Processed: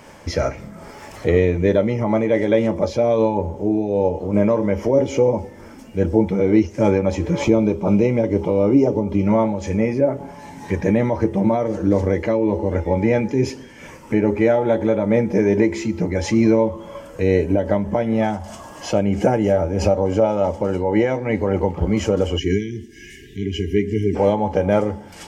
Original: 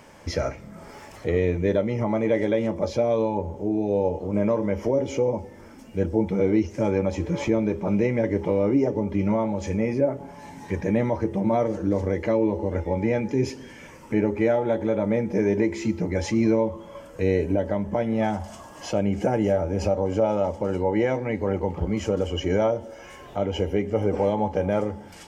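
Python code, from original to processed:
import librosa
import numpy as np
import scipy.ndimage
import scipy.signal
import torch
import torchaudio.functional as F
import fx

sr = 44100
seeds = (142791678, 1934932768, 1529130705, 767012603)

y = fx.peak_eq(x, sr, hz=1800.0, db=-13.5, octaves=0.32, at=(7.43, 9.24))
y = fx.spec_erase(y, sr, start_s=22.38, length_s=1.77, low_hz=450.0, high_hz=1600.0)
y = fx.am_noise(y, sr, seeds[0], hz=5.7, depth_pct=60)
y = y * librosa.db_to_amplitude(8.0)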